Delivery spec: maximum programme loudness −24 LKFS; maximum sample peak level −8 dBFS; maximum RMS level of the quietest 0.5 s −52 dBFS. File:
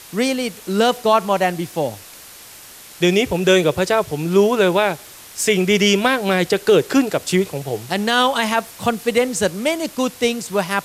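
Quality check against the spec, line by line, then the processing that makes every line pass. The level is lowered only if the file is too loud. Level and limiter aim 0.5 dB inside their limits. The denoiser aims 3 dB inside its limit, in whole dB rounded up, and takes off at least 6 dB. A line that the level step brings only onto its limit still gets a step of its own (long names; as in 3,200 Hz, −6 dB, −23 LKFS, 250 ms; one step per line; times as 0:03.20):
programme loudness −18.0 LKFS: out of spec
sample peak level −4.0 dBFS: out of spec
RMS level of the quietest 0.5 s −41 dBFS: out of spec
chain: broadband denoise 8 dB, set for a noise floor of −41 dBFS
level −6.5 dB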